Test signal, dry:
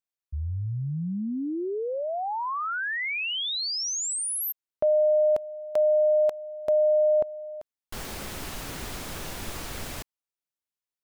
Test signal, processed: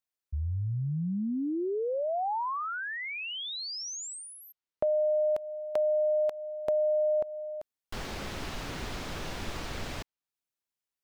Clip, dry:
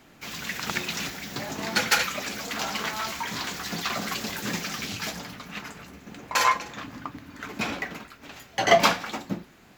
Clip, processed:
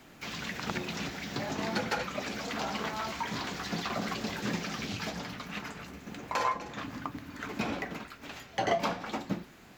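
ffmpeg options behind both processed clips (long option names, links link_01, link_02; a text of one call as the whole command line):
ffmpeg -i in.wav -filter_complex "[0:a]acrossover=split=950|6200[link_01][link_02][link_03];[link_01]acompressor=threshold=-28dB:ratio=4[link_04];[link_02]acompressor=threshold=-38dB:ratio=4[link_05];[link_03]acompressor=threshold=-60dB:ratio=4[link_06];[link_04][link_05][link_06]amix=inputs=3:normalize=0" out.wav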